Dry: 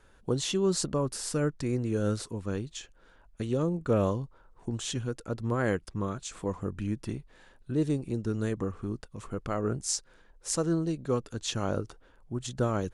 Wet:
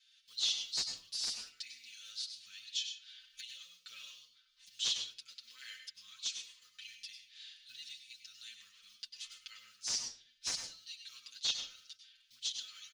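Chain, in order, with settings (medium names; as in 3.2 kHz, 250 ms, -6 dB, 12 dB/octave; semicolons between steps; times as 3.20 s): block-companded coder 7-bit; recorder AGC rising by 22 dB/s; inverse Chebyshev high-pass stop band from 890 Hz, stop band 70 dB; comb 3.9 ms, depth 51%; in parallel at -1.5 dB: compression 5:1, threshold -52 dBFS, peak gain reduction 24 dB; on the sum: hard clipper -23 dBFS, distortion -16 dB; distance through air 280 m; on a send at -6 dB: reverberation RT60 0.40 s, pre-delay 92 ms; on the sum: endless flanger 7.2 ms +0.83 Hz; trim +15 dB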